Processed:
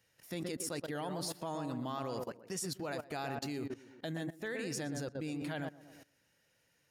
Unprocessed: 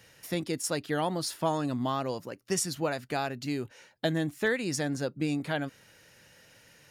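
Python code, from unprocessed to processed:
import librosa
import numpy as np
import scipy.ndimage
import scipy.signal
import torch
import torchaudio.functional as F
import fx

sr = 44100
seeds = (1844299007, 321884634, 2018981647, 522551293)

p1 = fx.rider(x, sr, range_db=3, speed_s=0.5)
p2 = fx.high_shelf(p1, sr, hz=9400.0, db=4.5)
p3 = p2 + fx.echo_tape(p2, sr, ms=120, feedback_pct=48, wet_db=-4.5, lp_hz=1300.0, drive_db=20.0, wow_cents=33, dry=0)
p4 = fx.level_steps(p3, sr, step_db=18)
y = p4 * librosa.db_to_amplitude(-2.5)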